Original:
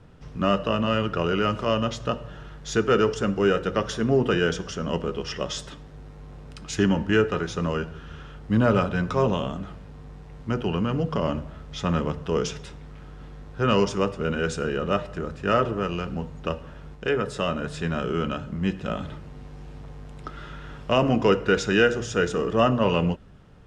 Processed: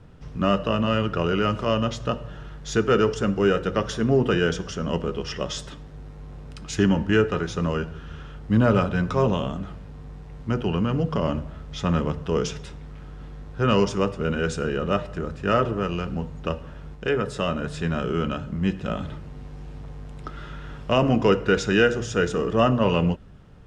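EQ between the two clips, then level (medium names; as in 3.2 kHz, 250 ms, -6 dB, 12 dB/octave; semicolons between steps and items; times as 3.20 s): bass shelf 200 Hz +3.5 dB; 0.0 dB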